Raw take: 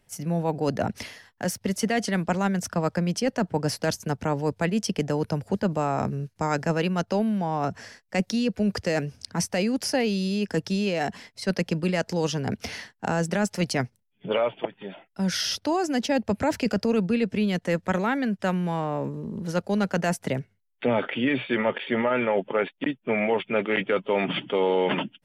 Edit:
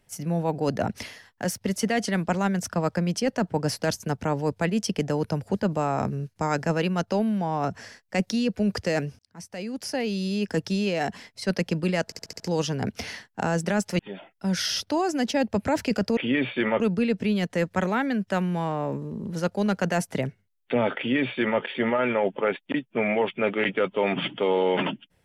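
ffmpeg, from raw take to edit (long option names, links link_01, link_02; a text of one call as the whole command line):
ffmpeg -i in.wav -filter_complex "[0:a]asplit=10[link_01][link_02][link_03][link_04][link_05][link_06][link_07][link_08][link_09][link_10];[link_01]atrim=end=9.19,asetpts=PTS-STARTPTS,afade=type=out:start_time=9.186:duration=0.004:curve=hsin[link_11];[link_02]atrim=start=9.19:end=12.122,asetpts=PTS-STARTPTS,afade=type=in:duration=1.25[link_12];[link_03]atrim=start=12.048:end=12.122[link_13];[link_04]atrim=start=12.048:end=12.122[link_14];[link_05]atrim=start=12.048:end=12.122[link_15];[link_06]atrim=start=12.048:end=12.122[link_16];[link_07]atrim=start=12.048:end=13.642[link_17];[link_08]atrim=start=14.738:end=16.922[link_18];[link_09]atrim=start=21.098:end=21.732[link_19];[link_10]atrim=start=16.918[link_20];[link_11][link_12]concat=n=2:v=0:a=1[link_21];[link_21][link_13]acrossfade=duration=0.004:curve1=hsin:curve2=hsin[link_22];[link_22][link_14]acrossfade=duration=0.004:curve1=hsin:curve2=hsin[link_23];[link_23][link_15]acrossfade=duration=0.004:curve1=hsin:curve2=hsin[link_24];[link_24][link_16]acrossfade=duration=0.004:curve1=hsin:curve2=hsin[link_25];[link_25][link_17]acrossfade=duration=0.004:curve1=hsin:curve2=hsin[link_26];[link_26][link_18]acrossfade=duration=0.004:curve1=hsin:curve2=hsin[link_27];[link_27][link_19]acrossfade=duration=0.004:curve1=hsin:curve2=hsin[link_28];[link_28][link_20]acrossfade=duration=0.004:curve1=hsin:curve2=hsin" out.wav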